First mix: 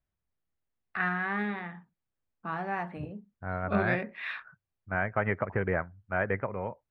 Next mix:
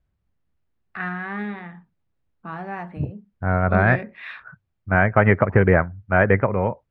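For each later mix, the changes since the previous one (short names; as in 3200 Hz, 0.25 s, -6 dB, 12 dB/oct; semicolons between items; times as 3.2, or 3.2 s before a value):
second voice +11.0 dB; master: add low shelf 360 Hz +5 dB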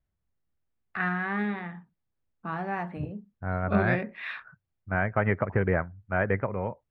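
second voice -9.5 dB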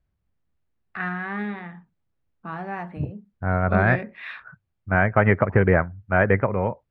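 second voice +7.5 dB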